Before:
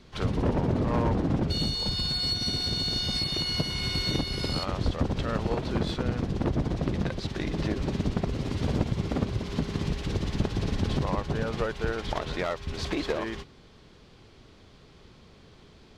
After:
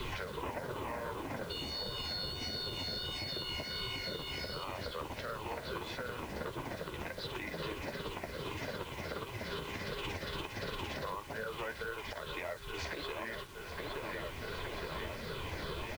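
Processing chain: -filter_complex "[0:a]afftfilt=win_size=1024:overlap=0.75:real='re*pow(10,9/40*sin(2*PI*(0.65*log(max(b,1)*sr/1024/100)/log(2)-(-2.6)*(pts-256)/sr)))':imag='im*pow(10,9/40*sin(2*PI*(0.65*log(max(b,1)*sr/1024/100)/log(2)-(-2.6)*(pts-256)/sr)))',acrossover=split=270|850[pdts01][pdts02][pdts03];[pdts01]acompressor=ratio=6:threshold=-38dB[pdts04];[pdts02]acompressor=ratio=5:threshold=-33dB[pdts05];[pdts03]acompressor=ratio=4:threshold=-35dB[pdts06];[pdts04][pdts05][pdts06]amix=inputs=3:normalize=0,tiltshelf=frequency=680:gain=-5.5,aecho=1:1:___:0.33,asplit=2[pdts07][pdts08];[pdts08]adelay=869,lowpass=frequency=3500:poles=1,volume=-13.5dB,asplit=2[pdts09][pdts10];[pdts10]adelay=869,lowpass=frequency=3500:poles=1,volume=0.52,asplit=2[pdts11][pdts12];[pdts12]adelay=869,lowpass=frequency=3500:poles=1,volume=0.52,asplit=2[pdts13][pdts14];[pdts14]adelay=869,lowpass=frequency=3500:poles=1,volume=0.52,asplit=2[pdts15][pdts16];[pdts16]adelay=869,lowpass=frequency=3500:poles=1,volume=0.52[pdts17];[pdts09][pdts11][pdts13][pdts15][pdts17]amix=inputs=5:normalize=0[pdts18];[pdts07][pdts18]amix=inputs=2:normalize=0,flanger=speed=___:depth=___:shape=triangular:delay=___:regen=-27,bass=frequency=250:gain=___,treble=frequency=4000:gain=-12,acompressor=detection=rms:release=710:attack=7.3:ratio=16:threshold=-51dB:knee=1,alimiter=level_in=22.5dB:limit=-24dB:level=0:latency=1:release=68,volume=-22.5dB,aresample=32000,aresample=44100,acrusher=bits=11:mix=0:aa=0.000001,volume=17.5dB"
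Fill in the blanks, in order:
2, 1.5, 7.8, 6.9, 2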